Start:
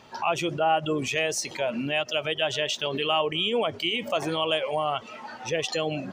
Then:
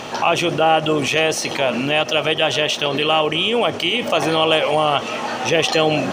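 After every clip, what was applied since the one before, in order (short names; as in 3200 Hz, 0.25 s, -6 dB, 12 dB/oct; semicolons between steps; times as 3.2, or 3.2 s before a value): per-bin compression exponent 0.6; dynamic EQ 7100 Hz, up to -5 dB, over -47 dBFS, Q 3.2; vocal rider 2 s; gain +5.5 dB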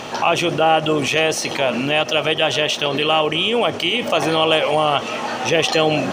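nothing audible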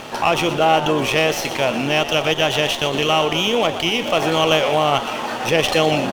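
crossover distortion -39 dBFS; frequency-shifting echo 0.12 s, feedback 58%, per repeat +93 Hz, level -12 dB; running maximum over 3 samples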